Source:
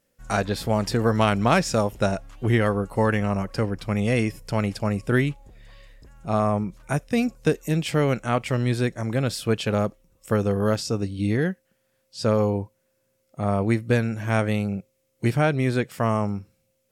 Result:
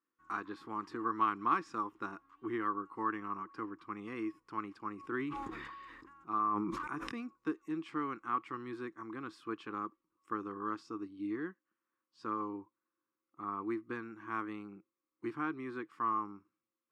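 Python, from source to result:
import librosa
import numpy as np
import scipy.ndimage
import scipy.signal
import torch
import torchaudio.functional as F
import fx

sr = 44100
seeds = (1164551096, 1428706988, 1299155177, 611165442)

y = fx.double_bandpass(x, sr, hz=600.0, octaves=1.8)
y = fx.low_shelf(y, sr, hz=470.0, db=-11.0)
y = fx.sustainer(y, sr, db_per_s=24.0, at=(4.97, 7.21))
y = y * librosa.db_to_amplitude(1.0)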